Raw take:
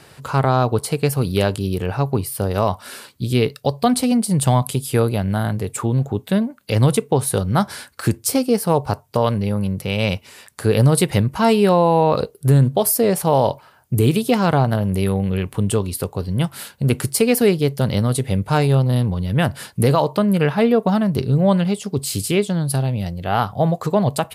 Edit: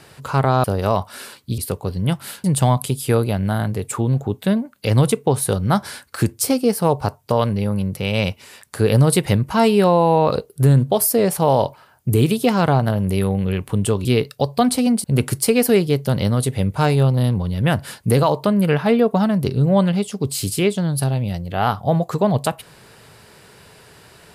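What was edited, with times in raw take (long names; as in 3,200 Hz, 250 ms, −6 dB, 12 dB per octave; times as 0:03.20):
0:00.64–0:02.36: remove
0:03.30–0:04.29: swap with 0:15.90–0:16.76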